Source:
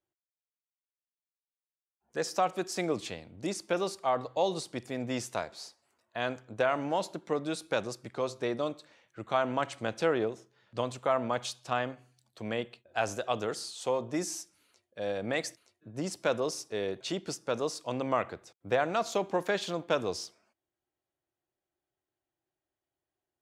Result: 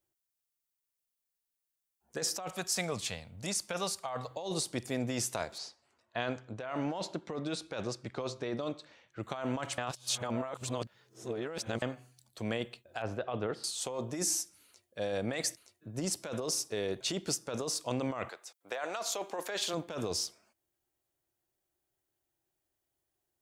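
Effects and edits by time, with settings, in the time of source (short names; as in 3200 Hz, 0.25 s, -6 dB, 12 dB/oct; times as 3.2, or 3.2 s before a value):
2.49–4.31 bell 330 Hz -14 dB
5.58–9.23 LPF 4900 Hz
9.78–11.82 reverse
13.02–13.64 air absorption 410 m
18.28–19.73 HPF 770 Hz -> 360 Hz
whole clip: low shelf 81 Hz +9 dB; negative-ratio compressor -33 dBFS, ratio -1; high shelf 6100 Hz +11 dB; gain -2 dB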